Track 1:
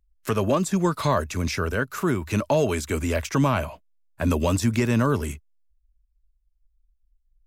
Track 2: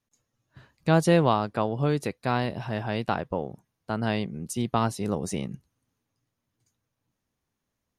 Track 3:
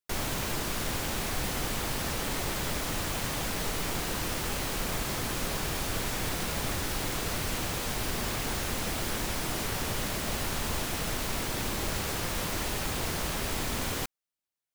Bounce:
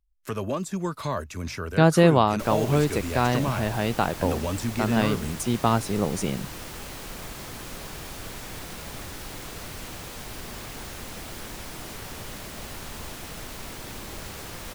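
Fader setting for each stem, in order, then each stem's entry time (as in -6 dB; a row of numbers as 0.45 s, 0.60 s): -7.0 dB, +3.0 dB, -6.0 dB; 0.00 s, 0.90 s, 2.30 s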